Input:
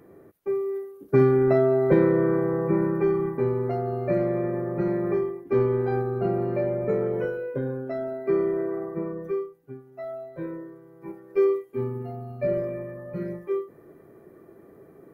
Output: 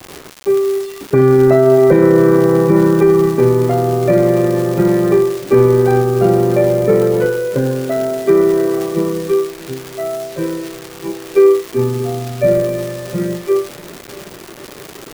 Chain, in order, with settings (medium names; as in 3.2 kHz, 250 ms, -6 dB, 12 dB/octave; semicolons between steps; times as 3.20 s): crackle 190 per s -32 dBFS; on a send: shuffle delay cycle 1064 ms, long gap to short 1.5:1, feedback 40%, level -21 dB; on the sum: bit crusher 8-bit; loudness maximiser +14 dB; trim -1 dB